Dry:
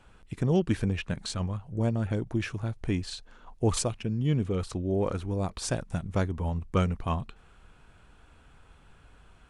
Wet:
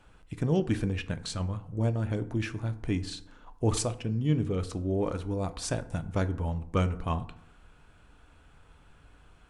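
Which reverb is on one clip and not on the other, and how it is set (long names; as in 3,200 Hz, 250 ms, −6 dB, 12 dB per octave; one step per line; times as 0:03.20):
feedback delay network reverb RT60 0.71 s, low-frequency decay 1.1×, high-frequency decay 0.5×, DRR 10.5 dB
level −1.5 dB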